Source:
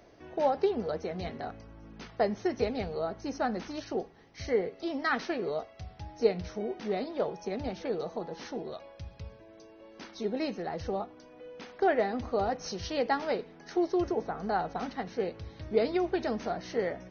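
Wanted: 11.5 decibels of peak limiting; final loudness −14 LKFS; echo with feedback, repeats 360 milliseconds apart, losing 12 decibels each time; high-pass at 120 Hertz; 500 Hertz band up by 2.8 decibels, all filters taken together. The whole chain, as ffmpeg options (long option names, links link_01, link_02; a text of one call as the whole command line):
ffmpeg -i in.wav -af "highpass=120,equalizer=frequency=500:width_type=o:gain=3.5,alimiter=limit=-21.5dB:level=0:latency=1,aecho=1:1:360|720|1080:0.251|0.0628|0.0157,volume=19dB" out.wav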